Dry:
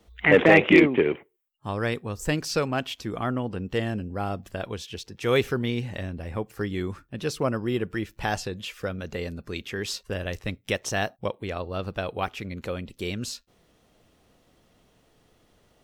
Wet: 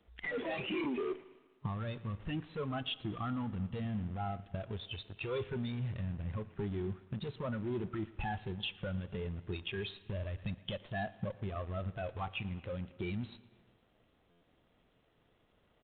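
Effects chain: high shelf 2500 Hz +2.5 dB; in parallel at -6 dB: fuzz box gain 37 dB, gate -35 dBFS; on the sum: tube stage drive 25 dB, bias 0.4; compressor 10:1, threshold -40 dBFS, peak gain reduction 14 dB; on a send: feedback echo 0.115 s, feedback 59%, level -15 dB; on the sum: spectral noise reduction 12 dB; Schroeder reverb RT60 1.7 s, combs from 33 ms, DRR 19 dB; stuck buffer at 14.3, samples 512, times 9; gain +6.5 dB; G.726 40 kbps 8000 Hz

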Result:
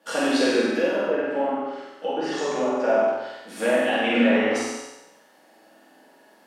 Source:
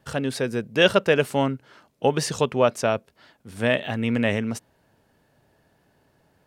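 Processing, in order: HPF 290 Hz 24 dB/oct; treble ducked by the level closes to 1100 Hz, closed at -18.5 dBFS; limiter -19 dBFS, peak gain reduction 10.5 dB; 0.73–2.8 flange 1.2 Hz, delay 6.3 ms, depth 5 ms, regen +65%; flutter echo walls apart 8 m, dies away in 0.91 s; non-linear reverb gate 0.32 s falling, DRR -6.5 dB

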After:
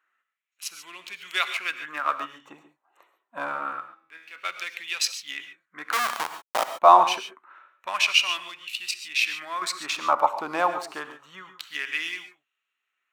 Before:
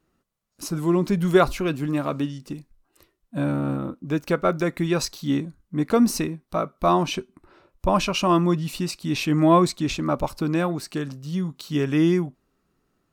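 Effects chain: Wiener smoothing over 9 samples; 3.8–4.36 resonator 81 Hz, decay 0.84 s, harmonics all, mix 90%; 5.92–6.75 Schmitt trigger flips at -20.5 dBFS; 8.91–9.62 compressor 6:1, threshold -22 dBFS, peak gain reduction 10 dB; LFO high-pass sine 0.26 Hz 810–2800 Hz; non-linear reverb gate 0.16 s rising, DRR 9.5 dB; gain +2.5 dB

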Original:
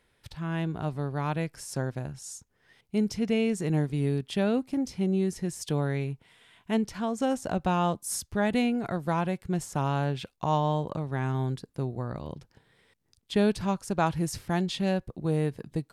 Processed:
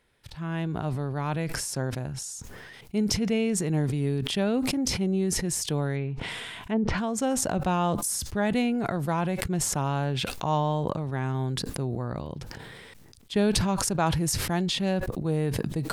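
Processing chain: 5.95–6.98 treble ducked by the level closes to 890 Hz, closed at -23 dBFS; sustainer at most 21 dB/s

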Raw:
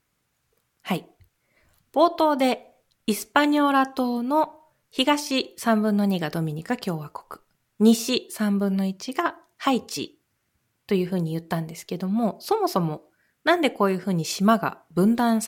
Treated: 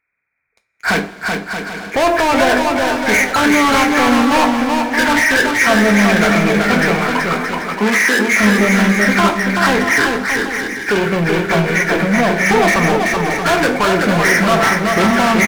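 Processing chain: nonlinear frequency compression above 1300 Hz 4:1; low shelf 310 Hz -10.5 dB; notches 50/100/150/200/250/300/350/400 Hz; limiter -17 dBFS, peak gain reduction 9 dB; sample leveller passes 5; 6.95–8.28 steep high-pass 170 Hz 96 dB/oct; bouncing-ball echo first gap 0.38 s, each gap 0.65×, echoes 5; two-slope reverb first 0.26 s, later 3.7 s, from -20 dB, DRR 6.5 dB; gain +5 dB

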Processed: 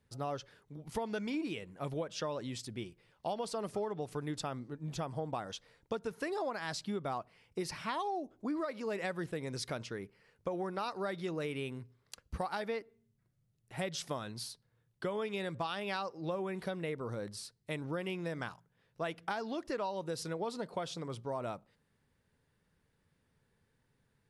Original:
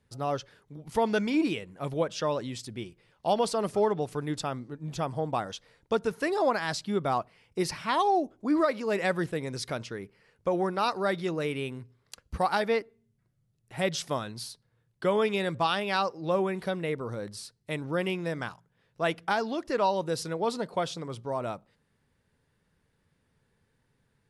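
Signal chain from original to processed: compressor, threshold -30 dBFS, peak gain reduction 10 dB; gain -3.5 dB

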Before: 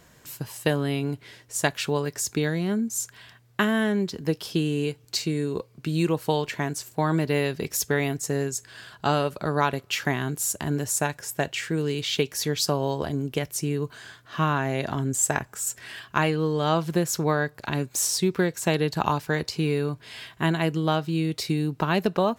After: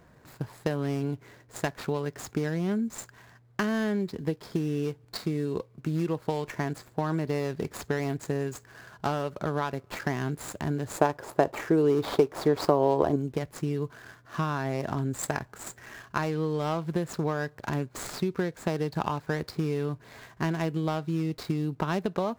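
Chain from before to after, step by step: median filter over 15 samples; compressor 4:1, threshold -25 dBFS, peak gain reduction 7.5 dB; 10.98–13.16 band shelf 590 Hz +9 dB 2.4 oct

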